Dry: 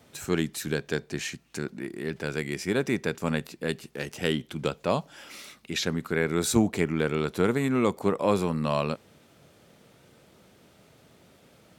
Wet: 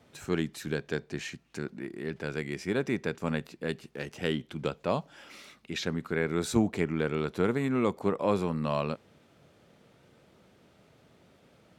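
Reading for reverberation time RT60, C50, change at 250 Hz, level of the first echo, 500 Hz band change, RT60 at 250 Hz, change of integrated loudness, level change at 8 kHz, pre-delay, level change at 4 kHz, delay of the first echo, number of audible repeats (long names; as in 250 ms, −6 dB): no reverb audible, no reverb audible, −3.0 dB, no echo audible, −3.0 dB, no reverb audible, −3.5 dB, −9.0 dB, no reverb audible, −5.5 dB, no echo audible, no echo audible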